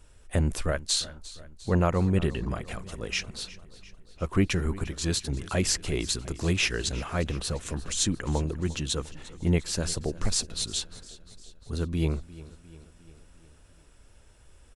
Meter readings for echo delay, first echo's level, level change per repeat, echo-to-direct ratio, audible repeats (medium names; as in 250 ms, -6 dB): 351 ms, -18.5 dB, -4.5 dB, -16.5 dB, 4